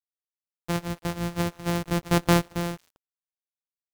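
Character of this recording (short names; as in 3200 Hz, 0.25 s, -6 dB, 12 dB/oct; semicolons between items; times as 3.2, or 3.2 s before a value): a buzz of ramps at a fixed pitch in blocks of 256 samples; chopped level 0.54 Hz, depth 65%, duty 35%; a quantiser's noise floor 10-bit, dither none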